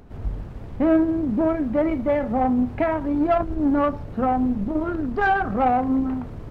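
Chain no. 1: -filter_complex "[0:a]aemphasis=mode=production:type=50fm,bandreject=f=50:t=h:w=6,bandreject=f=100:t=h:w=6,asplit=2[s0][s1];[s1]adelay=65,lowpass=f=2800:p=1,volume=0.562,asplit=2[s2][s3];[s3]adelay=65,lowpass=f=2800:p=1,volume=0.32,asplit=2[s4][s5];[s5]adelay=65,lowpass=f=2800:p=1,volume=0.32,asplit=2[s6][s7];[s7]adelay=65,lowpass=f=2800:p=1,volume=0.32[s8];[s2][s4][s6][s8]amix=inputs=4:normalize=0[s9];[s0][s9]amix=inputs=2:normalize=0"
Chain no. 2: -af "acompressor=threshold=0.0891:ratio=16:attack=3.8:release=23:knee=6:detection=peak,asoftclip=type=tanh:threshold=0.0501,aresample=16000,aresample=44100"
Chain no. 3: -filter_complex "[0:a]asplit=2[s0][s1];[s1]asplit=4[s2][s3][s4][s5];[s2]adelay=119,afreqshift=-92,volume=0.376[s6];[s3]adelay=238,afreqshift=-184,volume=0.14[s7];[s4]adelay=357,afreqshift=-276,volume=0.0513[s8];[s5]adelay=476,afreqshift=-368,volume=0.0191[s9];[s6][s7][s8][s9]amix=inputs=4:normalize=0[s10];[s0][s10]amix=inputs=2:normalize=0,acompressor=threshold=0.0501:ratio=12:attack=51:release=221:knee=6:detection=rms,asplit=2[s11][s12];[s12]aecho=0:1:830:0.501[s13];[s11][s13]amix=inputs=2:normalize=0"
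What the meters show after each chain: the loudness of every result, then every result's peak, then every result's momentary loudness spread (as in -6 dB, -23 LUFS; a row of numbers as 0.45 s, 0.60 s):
-21.0 LUFS, -30.5 LUFS, -28.5 LUFS; -6.5 dBFS, -26.0 dBFS, -14.5 dBFS; 7 LU, 5 LU, 3 LU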